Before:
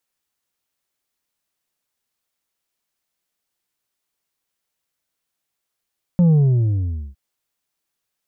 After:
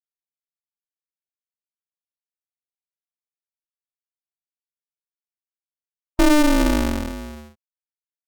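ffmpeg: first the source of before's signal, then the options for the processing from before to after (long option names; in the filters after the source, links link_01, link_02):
-f lavfi -i "aevalsrc='0.282*clip((0.96-t)/0.85,0,1)*tanh(1.68*sin(2*PI*180*0.96/log(65/180)*(exp(log(65/180)*t/0.96)-1)))/tanh(1.68)':duration=0.96:sample_rate=44100"
-filter_complex "[0:a]afftfilt=real='re*gte(hypot(re,im),0.0178)':imag='im*gte(hypot(re,im),0.0178)':win_size=1024:overlap=0.75,asplit=2[link_01][link_02];[link_02]aecho=0:1:411:0.266[link_03];[link_01][link_03]amix=inputs=2:normalize=0,aeval=exprs='val(0)*sgn(sin(2*PI*150*n/s))':channel_layout=same"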